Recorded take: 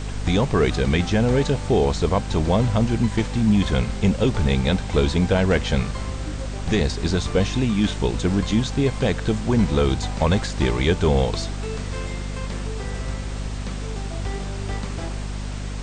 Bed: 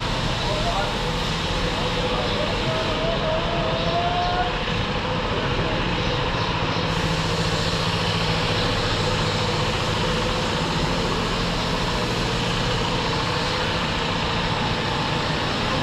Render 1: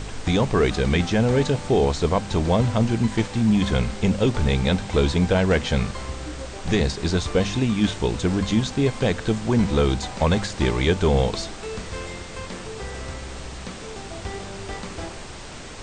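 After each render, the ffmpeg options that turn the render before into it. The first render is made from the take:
-af "bandreject=f=50:t=h:w=4,bandreject=f=100:t=h:w=4,bandreject=f=150:t=h:w=4,bandreject=f=200:t=h:w=4,bandreject=f=250:t=h:w=4"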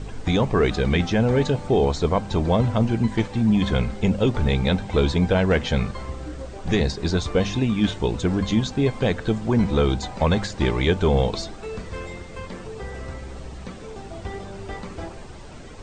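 -af "afftdn=nr=10:nf=-37"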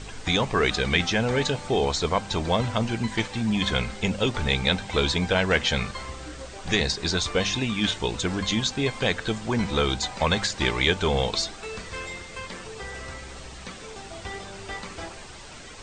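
-af "tiltshelf=f=970:g=-7"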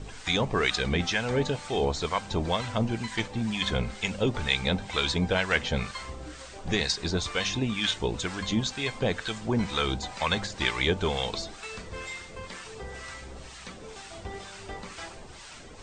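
-filter_complex "[0:a]acrossover=split=890[s0][s1];[s0]aeval=exprs='val(0)*(1-0.7/2+0.7/2*cos(2*PI*2.1*n/s))':c=same[s2];[s1]aeval=exprs='val(0)*(1-0.7/2-0.7/2*cos(2*PI*2.1*n/s))':c=same[s3];[s2][s3]amix=inputs=2:normalize=0"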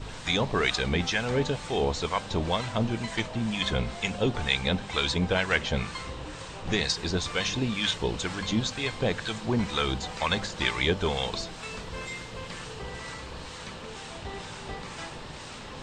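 -filter_complex "[1:a]volume=0.1[s0];[0:a][s0]amix=inputs=2:normalize=0"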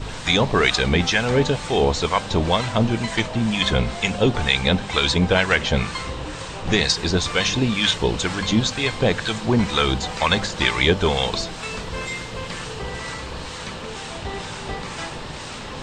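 -af "volume=2.51,alimiter=limit=0.708:level=0:latency=1"

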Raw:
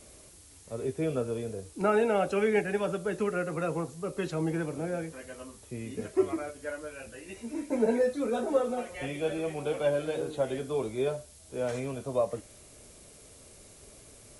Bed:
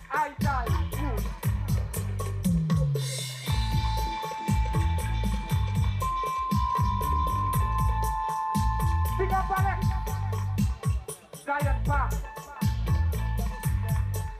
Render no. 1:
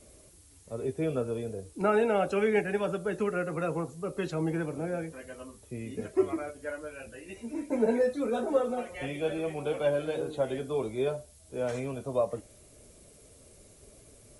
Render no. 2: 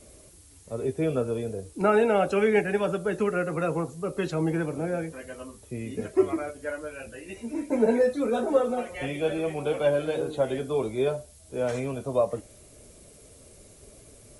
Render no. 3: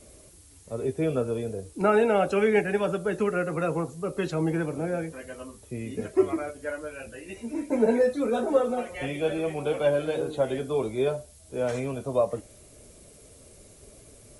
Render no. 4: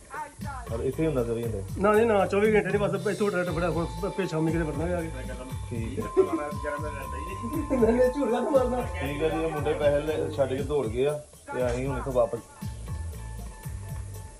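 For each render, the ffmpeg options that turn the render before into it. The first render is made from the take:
-af "afftdn=nr=6:nf=-54"
-af "volume=1.58"
-af anull
-filter_complex "[1:a]volume=0.335[s0];[0:a][s0]amix=inputs=2:normalize=0"

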